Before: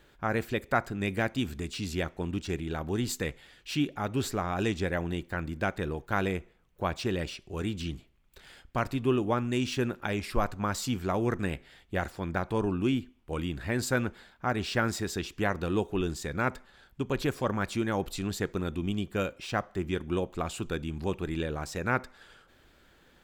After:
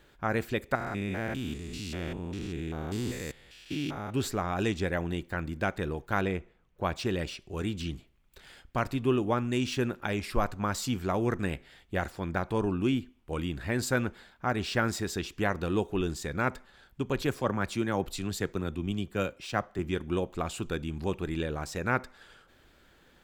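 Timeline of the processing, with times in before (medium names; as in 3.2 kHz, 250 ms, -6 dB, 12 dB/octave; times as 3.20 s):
0.75–4.14 s: spectrogram pixelated in time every 200 ms
6.21–6.83 s: low-pass 3.7 kHz 6 dB/octave
17.21–19.79 s: three bands expanded up and down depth 40%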